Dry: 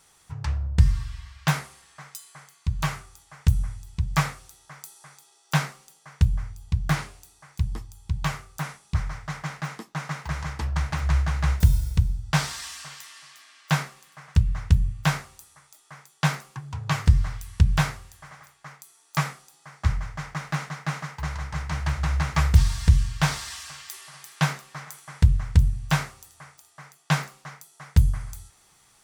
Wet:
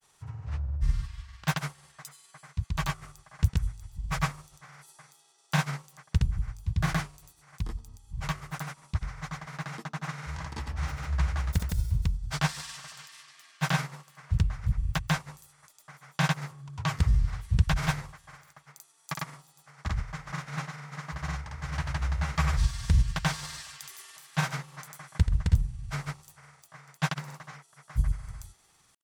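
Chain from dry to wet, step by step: de-hum 73.76 Hz, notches 18; granulator, grains 20 per s, pitch spread up and down by 0 st; trim -3 dB

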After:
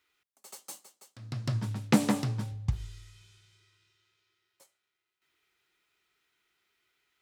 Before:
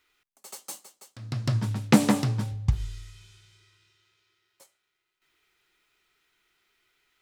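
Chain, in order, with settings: high-pass 52 Hz; trim -5 dB

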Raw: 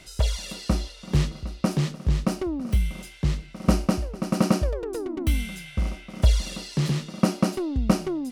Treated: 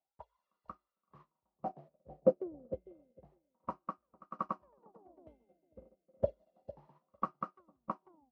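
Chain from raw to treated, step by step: high-pass 45 Hz; bass shelf 410 Hz +7 dB; wah-wah 0.3 Hz 490–1200 Hz, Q 9.8; treble shelf 2.2 kHz -7.5 dB; on a send: bucket-brigade echo 452 ms, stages 2048, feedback 37%, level -6 dB; on the sum: upward expansion 2.5:1, over -55 dBFS; trim +11 dB

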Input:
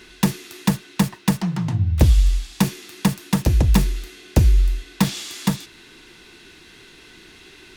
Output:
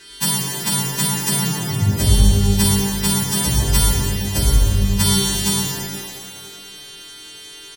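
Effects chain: partials quantised in pitch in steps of 2 st; comb 7 ms, depth 37%; harmonic-percussive split harmonic +4 dB; pitch-shifted reverb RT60 2.1 s, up +12 st, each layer -8 dB, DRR -4 dB; trim -7.5 dB

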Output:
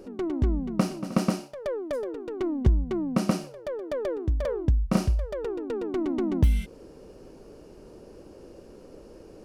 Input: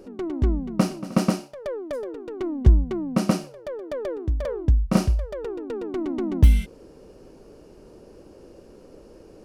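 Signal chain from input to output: compression 2:1, threshold -21 dBFS, peak gain reduction 7.5 dB

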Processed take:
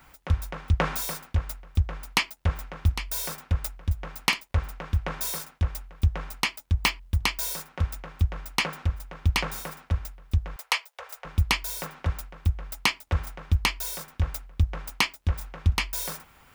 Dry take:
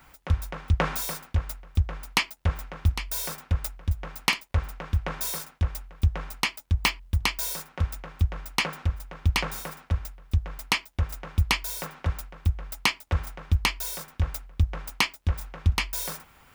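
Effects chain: 10.56–11.25 s: elliptic high-pass 460 Hz, stop band 40 dB

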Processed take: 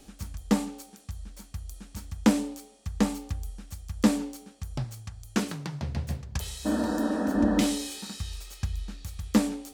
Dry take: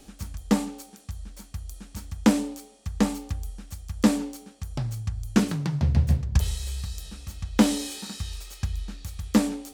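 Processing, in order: 6.68–7.60 s: spectral replace 210–1900 Hz after; 4.84–7.35 s: bass shelf 210 Hz -11 dB; trim -2 dB

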